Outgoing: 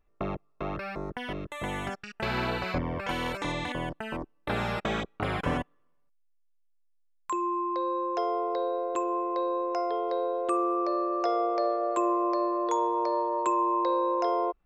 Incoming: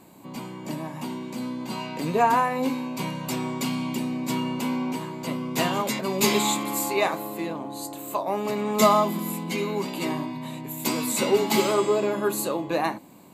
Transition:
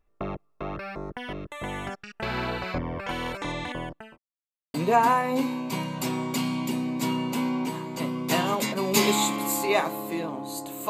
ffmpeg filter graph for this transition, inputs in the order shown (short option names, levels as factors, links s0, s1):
-filter_complex "[0:a]apad=whole_dur=10.89,atrim=end=10.89,asplit=2[s0][s1];[s0]atrim=end=4.18,asetpts=PTS-STARTPTS,afade=t=out:st=3.66:d=0.52:c=qsin[s2];[s1]atrim=start=4.18:end=4.74,asetpts=PTS-STARTPTS,volume=0[s3];[1:a]atrim=start=2.01:end=8.16,asetpts=PTS-STARTPTS,afade=t=in:d=0.004:c=hsin[s4];[s2][s3][s4]concat=n=3:v=0:a=1"